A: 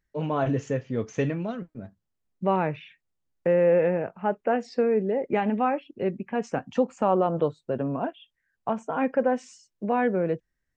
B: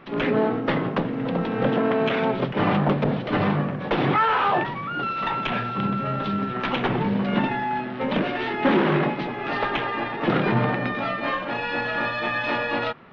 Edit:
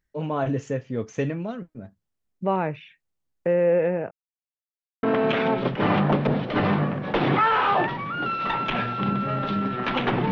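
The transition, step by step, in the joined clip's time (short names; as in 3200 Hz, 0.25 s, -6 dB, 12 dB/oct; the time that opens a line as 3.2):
A
4.11–5.03 mute
5.03 switch to B from 1.8 s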